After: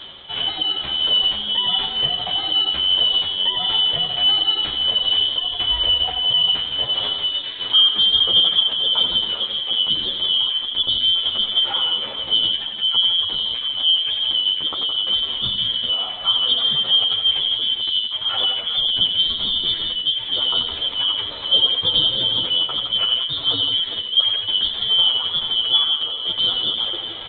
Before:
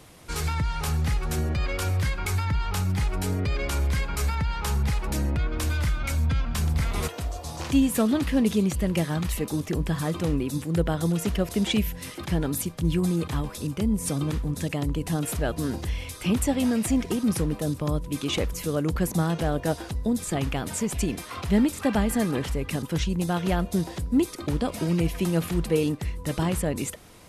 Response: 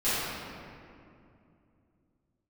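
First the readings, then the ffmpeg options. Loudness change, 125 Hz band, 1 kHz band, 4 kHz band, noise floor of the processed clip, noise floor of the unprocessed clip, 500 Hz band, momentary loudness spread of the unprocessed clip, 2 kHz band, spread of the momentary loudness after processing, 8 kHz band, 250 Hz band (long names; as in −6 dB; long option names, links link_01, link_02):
+9.5 dB, −16.0 dB, +1.0 dB, +25.5 dB, −29 dBFS, −40 dBFS, −7.5 dB, 6 LU, −1.5 dB, 5 LU, below −40 dB, −17.0 dB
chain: -filter_complex "[0:a]afftfilt=real='real(if(lt(b,272),68*(eq(floor(b/68),0)*1+eq(floor(b/68),1)*3+eq(floor(b/68),2)*0+eq(floor(b/68),3)*2)+mod(b,68),b),0)':imag='imag(if(lt(b,272),68*(eq(floor(b/68),0)*1+eq(floor(b/68),1)*3+eq(floor(b/68),2)*0+eq(floor(b/68),3)*2)+mod(b,68),b),0)':win_size=2048:overlap=0.75,areverse,acompressor=mode=upward:threshold=-25dB:ratio=2.5,areverse,aresample=8000,aresample=44100,lowshelf=frequency=96:gain=2,asplit=2[link_01][link_02];[link_02]aecho=0:1:87|91|164|182|399|408:0.376|0.188|0.376|0.158|0.237|0.112[link_03];[link_01][link_03]amix=inputs=2:normalize=0,adynamicequalizer=threshold=0.00141:dfrequency=480:dqfactor=4.4:tfrequency=480:tqfactor=4.4:attack=5:release=100:ratio=0.375:range=2:mode=boostabove:tftype=bell,asplit=2[link_04][link_05];[link_05]adelay=10.1,afreqshift=-1.5[link_06];[link_04][link_06]amix=inputs=2:normalize=1,volume=7dB"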